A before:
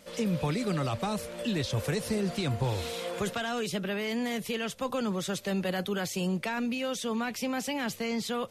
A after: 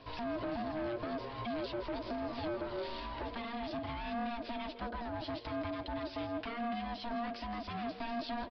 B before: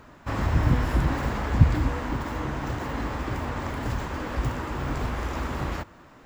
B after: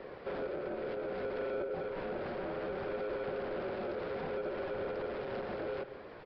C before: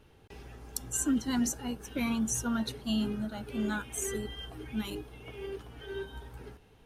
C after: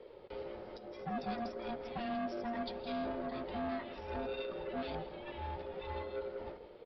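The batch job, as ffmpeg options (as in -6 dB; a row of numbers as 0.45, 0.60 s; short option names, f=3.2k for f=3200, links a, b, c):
-filter_complex "[0:a]lowshelf=f=120:g=9.5,acompressor=threshold=-22dB:ratio=6,alimiter=limit=-22dB:level=0:latency=1:release=426,acrossover=split=300[a][b];[b]acompressor=threshold=-38dB:ratio=6[c];[a][c]amix=inputs=2:normalize=0,asoftclip=type=hard:threshold=-27dB,flanger=delay=1.4:depth=7.1:regen=-35:speed=0.66:shape=sinusoidal,aeval=exprs='val(0)*sin(2*PI*470*n/s)':c=same,asoftclip=type=tanh:threshold=-39.5dB,asplit=2[d][e];[e]aecho=0:1:164:0.211[f];[d][f]amix=inputs=2:normalize=0,aresample=11025,aresample=44100,volume=6dB"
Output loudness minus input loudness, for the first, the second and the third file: -8.0, -10.5, -7.5 LU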